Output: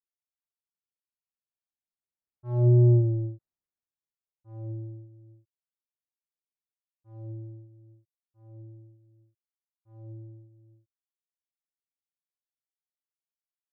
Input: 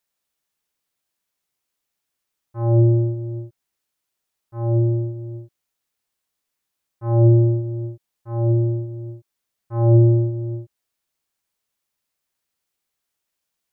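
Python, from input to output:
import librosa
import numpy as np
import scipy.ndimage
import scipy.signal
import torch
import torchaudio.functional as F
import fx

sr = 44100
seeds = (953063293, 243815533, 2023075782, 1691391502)

y = fx.wiener(x, sr, points=15)
y = fx.doppler_pass(y, sr, speed_mps=15, closest_m=1.8, pass_at_s=3.01)
y = fx.low_shelf(y, sr, hz=370.0, db=6.5)
y = y * 10.0 ** (-1.0 / 20.0)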